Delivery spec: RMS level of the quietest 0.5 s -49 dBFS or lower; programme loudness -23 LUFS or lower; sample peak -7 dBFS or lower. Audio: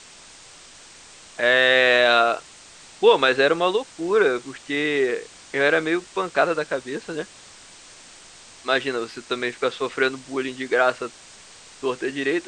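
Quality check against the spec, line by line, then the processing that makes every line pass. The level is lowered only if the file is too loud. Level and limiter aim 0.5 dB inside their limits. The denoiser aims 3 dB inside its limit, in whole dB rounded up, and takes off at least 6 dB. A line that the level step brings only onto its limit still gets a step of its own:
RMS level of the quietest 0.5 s -46 dBFS: fail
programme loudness -21.5 LUFS: fail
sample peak -4.0 dBFS: fail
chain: noise reduction 6 dB, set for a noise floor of -46 dBFS; trim -2 dB; peak limiter -7.5 dBFS

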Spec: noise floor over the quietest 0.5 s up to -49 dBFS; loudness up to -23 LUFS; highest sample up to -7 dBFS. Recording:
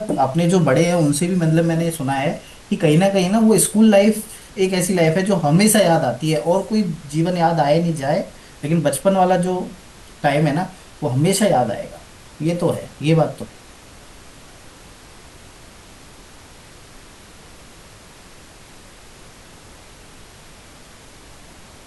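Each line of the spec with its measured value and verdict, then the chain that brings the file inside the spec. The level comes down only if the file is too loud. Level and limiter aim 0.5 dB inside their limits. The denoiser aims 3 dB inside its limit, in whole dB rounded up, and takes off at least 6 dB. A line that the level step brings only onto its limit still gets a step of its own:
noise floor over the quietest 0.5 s -43 dBFS: fail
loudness -17.5 LUFS: fail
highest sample -4.0 dBFS: fail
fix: noise reduction 6 dB, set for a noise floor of -43 dBFS; trim -6 dB

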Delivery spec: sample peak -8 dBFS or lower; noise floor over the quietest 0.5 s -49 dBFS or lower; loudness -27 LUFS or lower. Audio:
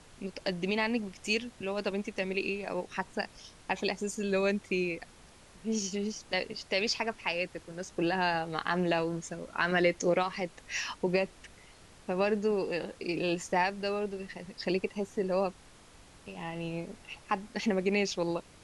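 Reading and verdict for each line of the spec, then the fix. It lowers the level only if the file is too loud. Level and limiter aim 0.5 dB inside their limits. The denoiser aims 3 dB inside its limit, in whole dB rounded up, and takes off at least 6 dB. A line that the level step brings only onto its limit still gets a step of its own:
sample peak -13.0 dBFS: pass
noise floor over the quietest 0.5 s -56 dBFS: pass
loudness -32.5 LUFS: pass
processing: none needed

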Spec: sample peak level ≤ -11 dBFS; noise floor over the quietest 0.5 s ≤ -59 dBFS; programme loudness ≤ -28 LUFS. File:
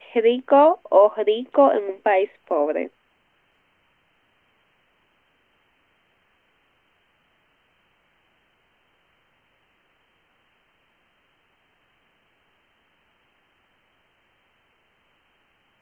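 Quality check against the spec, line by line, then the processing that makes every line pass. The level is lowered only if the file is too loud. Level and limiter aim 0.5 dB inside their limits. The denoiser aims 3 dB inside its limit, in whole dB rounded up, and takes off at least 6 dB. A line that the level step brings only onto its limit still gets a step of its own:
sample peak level -4.0 dBFS: fail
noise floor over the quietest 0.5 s -65 dBFS: pass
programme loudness -19.5 LUFS: fail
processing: trim -9 dB

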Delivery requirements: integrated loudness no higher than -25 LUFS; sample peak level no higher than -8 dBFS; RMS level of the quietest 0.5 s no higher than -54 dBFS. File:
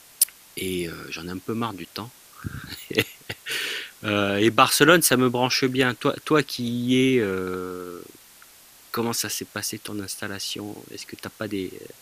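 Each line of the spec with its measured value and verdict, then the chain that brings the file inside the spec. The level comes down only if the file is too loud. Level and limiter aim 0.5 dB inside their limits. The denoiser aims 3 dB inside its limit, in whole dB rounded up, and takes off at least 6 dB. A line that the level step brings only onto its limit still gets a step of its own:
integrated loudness -23.5 LUFS: fail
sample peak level -1.5 dBFS: fail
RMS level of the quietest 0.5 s -51 dBFS: fail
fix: noise reduction 6 dB, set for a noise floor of -51 dBFS; trim -2 dB; peak limiter -8.5 dBFS

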